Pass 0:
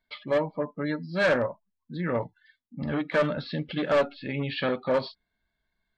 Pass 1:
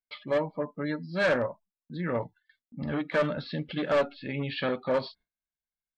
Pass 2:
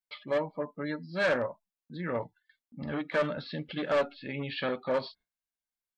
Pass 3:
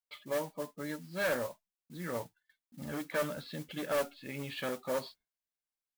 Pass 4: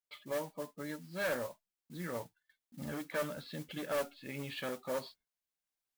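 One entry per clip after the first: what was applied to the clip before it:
gate with hold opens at -51 dBFS; gain -2 dB
low shelf 240 Hz -4.5 dB; gain -1.5 dB
modulation noise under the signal 14 dB; gain -5 dB
recorder AGC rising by 6 dB/s; gain -3 dB

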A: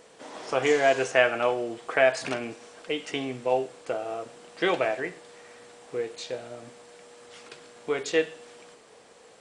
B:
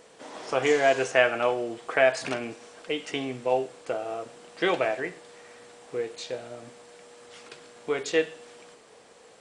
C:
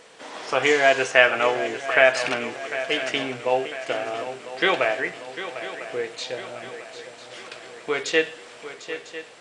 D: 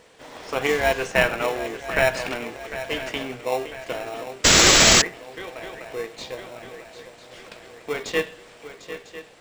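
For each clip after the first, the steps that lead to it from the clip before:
nothing audible
bell 2400 Hz +8 dB 3 oct; swung echo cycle 0.999 s, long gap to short 3:1, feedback 50%, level -12.5 dB
painted sound noise, 4.44–5.02, 1100–7900 Hz -10 dBFS; in parallel at -6 dB: sample-and-hold 28×; on the sum: gain -5 dB

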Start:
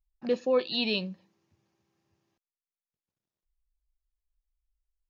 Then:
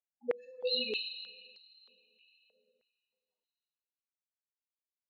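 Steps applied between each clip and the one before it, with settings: spectral contrast raised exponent 3.8; two-slope reverb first 0.57 s, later 2.8 s, from -15 dB, DRR -1.5 dB; stepped high-pass 3.2 Hz 660–4800 Hz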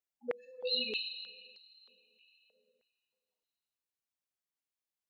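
dynamic EQ 400 Hz, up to -5 dB, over -45 dBFS, Q 1.4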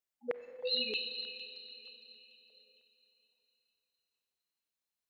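thin delay 0.458 s, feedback 41%, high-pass 3100 Hz, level -9.5 dB; Schroeder reverb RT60 3.3 s, combs from 31 ms, DRR 11.5 dB

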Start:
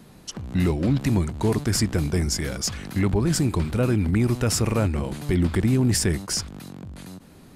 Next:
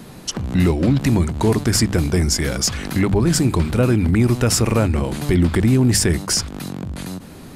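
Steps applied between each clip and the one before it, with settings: in parallel at +3 dB: compressor, threshold -31 dBFS, peak gain reduction 13.5 dB; on the sum: notches 50/100/150/200 Hz; gain +3 dB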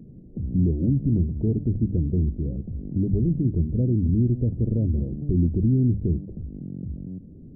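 Gaussian blur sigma 24 samples; gain -3 dB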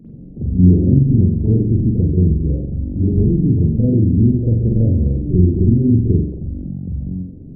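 reverb, pre-delay 44 ms, DRR -7.5 dB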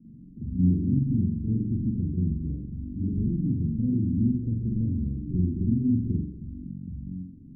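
ladder low-pass 300 Hz, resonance 45%; gain -6 dB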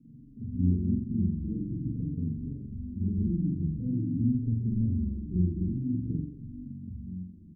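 endless flanger 4.3 ms -0.48 Hz

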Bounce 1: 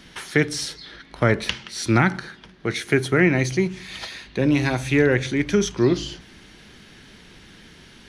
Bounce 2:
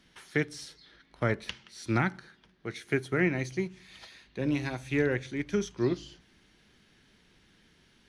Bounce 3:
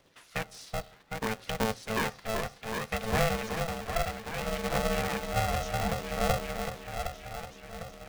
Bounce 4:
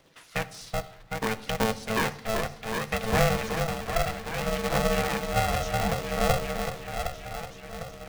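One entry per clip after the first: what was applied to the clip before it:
upward expander 1.5:1, over -29 dBFS; gain -8.5 dB
repeats that get brighter 0.379 s, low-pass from 750 Hz, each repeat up 1 oct, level 0 dB; phaser 0.63 Hz, delay 2.9 ms, feedback 49%; polarity switched at an audio rate 330 Hz; gain -5 dB
shoebox room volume 2400 m³, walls furnished, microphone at 0.62 m; gain +3.5 dB

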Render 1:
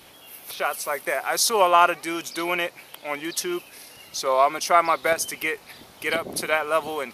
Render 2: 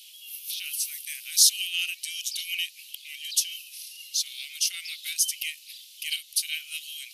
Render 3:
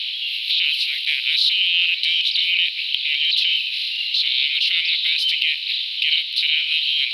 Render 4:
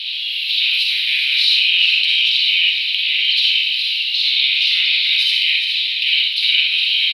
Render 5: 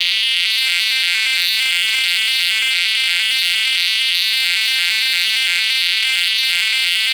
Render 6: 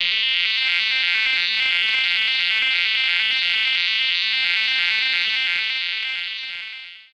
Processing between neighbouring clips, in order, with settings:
elliptic high-pass 2800 Hz, stop band 60 dB; gain +4.5 dB
per-bin compression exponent 0.6; EQ curve 510 Hz 0 dB, 780 Hz -4 dB, 2100 Hz +10 dB, 4000 Hz +14 dB, 6500 Hz -30 dB, 10000 Hz -24 dB; in parallel at -2 dB: negative-ratio compressor -20 dBFS, ratio -0.5; on the sum: gain -4.5 dB
echo 0.417 s -8.5 dB; reverb RT60 0.65 s, pre-delay 39 ms, DRR -2 dB; gain -1 dB
arpeggiated vocoder major triad, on F3, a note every 0.114 s; sample leveller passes 3; fast leveller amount 100%; gain -9 dB
ending faded out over 2.01 s; air absorption 260 m; downsampling 22050 Hz; gain +1.5 dB

